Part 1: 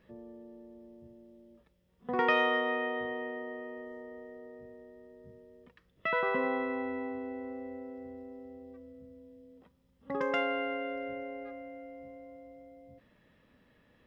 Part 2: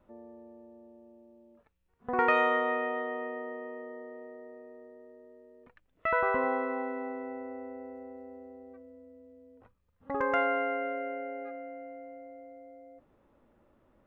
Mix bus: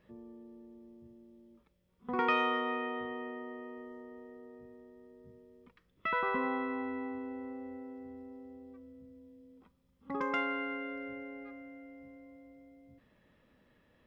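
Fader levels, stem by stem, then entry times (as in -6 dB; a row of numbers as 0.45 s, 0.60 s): -3.0 dB, -10.0 dB; 0.00 s, 0.00 s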